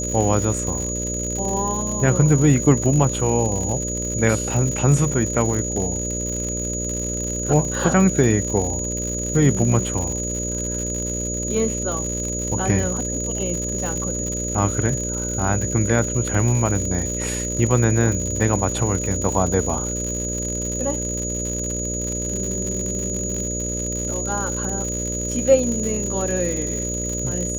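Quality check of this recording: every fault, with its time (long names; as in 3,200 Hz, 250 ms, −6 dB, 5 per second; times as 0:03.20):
mains buzz 60 Hz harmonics 10 −28 dBFS
surface crackle 110 per second −25 dBFS
whistle 6,800 Hz −26 dBFS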